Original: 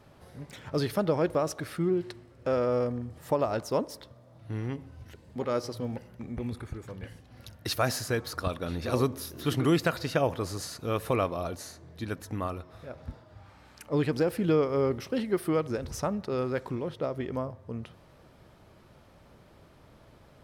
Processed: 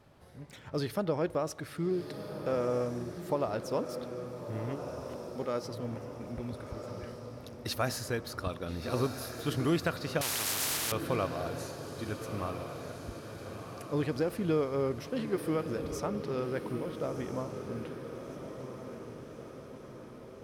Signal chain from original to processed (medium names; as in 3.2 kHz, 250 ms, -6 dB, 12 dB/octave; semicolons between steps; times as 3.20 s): echo that smears into a reverb 1362 ms, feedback 57%, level -8 dB; 10.21–10.92 s: spectrum-flattening compressor 10:1; trim -4.5 dB